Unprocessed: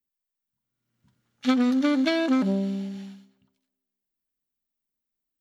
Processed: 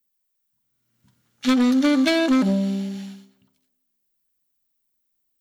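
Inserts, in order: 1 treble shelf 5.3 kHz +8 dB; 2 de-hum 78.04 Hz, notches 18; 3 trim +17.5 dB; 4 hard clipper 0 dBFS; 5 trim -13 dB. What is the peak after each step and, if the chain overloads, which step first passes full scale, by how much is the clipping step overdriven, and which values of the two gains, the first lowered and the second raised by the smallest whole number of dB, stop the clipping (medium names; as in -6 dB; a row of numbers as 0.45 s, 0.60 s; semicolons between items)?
-11.0 dBFS, -11.0 dBFS, +6.5 dBFS, 0.0 dBFS, -13.0 dBFS; step 3, 6.5 dB; step 3 +10.5 dB, step 5 -6 dB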